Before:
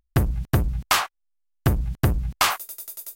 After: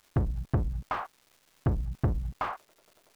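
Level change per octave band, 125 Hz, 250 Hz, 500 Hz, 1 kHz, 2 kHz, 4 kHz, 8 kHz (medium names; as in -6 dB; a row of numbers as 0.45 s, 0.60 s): -6.5 dB, -6.5 dB, -6.5 dB, -9.5 dB, -15.5 dB, -26.0 dB, under -30 dB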